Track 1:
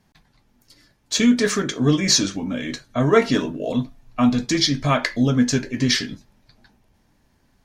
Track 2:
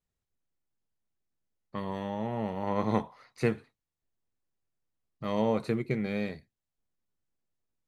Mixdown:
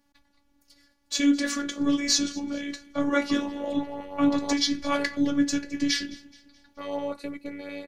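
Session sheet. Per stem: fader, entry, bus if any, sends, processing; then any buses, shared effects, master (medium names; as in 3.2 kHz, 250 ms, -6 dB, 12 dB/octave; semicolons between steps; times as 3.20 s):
-4.0 dB, 0.00 s, no send, echo send -21.5 dB, none
+2.0 dB, 1.55 s, no send, no echo send, high-pass 99 Hz 24 dB/octave; peaking EQ 180 Hz -8.5 dB 1.3 oct; LFO notch saw up 5.7 Hz 450–3900 Hz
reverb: none
echo: feedback delay 213 ms, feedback 46%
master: robot voice 284 Hz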